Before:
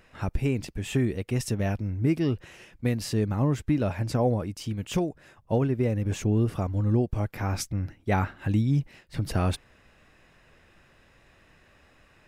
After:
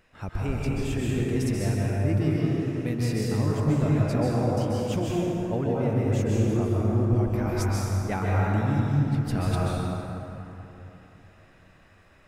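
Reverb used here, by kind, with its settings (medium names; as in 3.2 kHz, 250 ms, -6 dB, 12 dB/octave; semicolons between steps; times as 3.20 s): plate-style reverb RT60 3.4 s, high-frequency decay 0.45×, pre-delay 120 ms, DRR -5.5 dB; trim -5 dB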